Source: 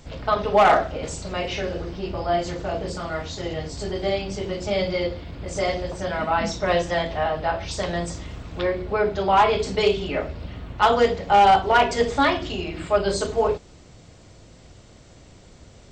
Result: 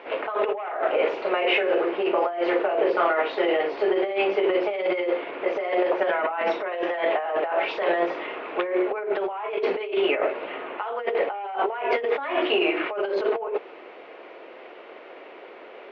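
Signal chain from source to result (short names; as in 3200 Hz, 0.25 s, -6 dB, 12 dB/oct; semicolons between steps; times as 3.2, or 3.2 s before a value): elliptic band-pass 380–2600 Hz, stop band 50 dB; limiter -13.5 dBFS, peak gain reduction 7 dB; negative-ratio compressor -32 dBFS, ratio -1; gain +7 dB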